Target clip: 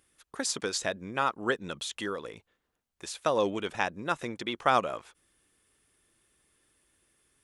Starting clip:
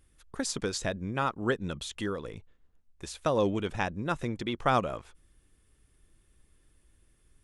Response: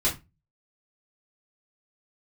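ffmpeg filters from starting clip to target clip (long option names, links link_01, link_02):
-af "highpass=frequency=500:poles=1,volume=3dB"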